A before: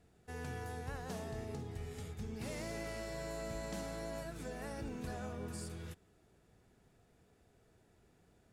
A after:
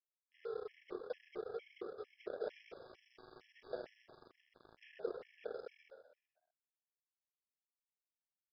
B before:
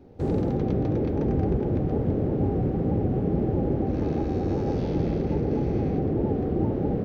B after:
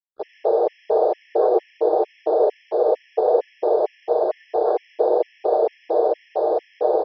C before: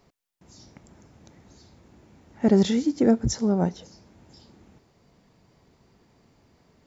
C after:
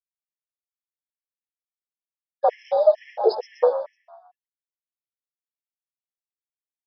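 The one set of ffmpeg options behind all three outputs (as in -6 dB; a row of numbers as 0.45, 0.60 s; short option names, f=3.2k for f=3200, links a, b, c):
-filter_complex "[0:a]aemphasis=mode=production:type=50kf,bandreject=f=3.9k:w=5.5,afwtdn=0.0316,equalizer=f=850:w=0.82:g=-8,aecho=1:1:6.8:0.72,asplit=2[a][b];[b]asoftclip=type=tanh:threshold=-23dB,volume=-10.5dB[c];[a][c]amix=inputs=2:normalize=0,afreqshift=320,aresample=11025,aeval=exprs='sgn(val(0))*max(abs(val(0))-0.00335,0)':c=same,aresample=44100,asplit=6[d][e][f][g][h][i];[e]adelay=125,afreqshift=46,volume=-11dB[j];[f]adelay=250,afreqshift=92,volume=-17.9dB[k];[g]adelay=375,afreqshift=138,volume=-24.9dB[l];[h]adelay=500,afreqshift=184,volume=-31.8dB[m];[i]adelay=625,afreqshift=230,volume=-38.7dB[n];[d][j][k][l][m][n]amix=inputs=6:normalize=0,afftfilt=real='re*gt(sin(2*PI*2.2*pts/sr)*(1-2*mod(floor(b*sr/1024/1700),2)),0)':imag='im*gt(sin(2*PI*2.2*pts/sr)*(1-2*mod(floor(b*sr/1024/1700),2)),0)':win_size=1024:overlap=0.75,volume=5dB"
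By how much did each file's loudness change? -4.0, +4.5, +0.5 LU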